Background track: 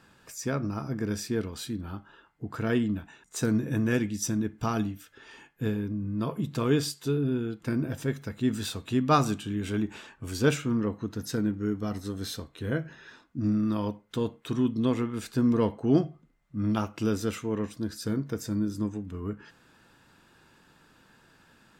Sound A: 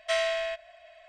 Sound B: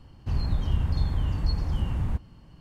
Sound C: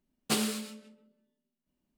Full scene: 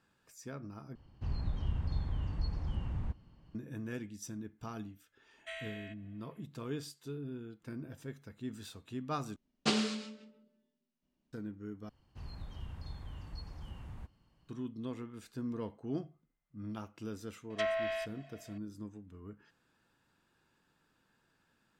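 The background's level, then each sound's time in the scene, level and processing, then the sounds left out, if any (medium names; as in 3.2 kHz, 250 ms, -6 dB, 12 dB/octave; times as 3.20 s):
background track -15 dB
0.95 s: replace with B -9.5 dB + distance through air 64 m
5.38 s: add A -13 dB + static phaser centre 2.2 kHz, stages 4
9.36 s: replace with C -0.5 dB + low-pass 6.3 kHz 24 dB/octave
11.89 s: replace with B -13.5 dB + bass shelf 490 Hz -6.5 dB
17.50 s: add A -5 dB + low-pass that closes with the level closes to 1.7 kHz, closed at -23.5 dBFS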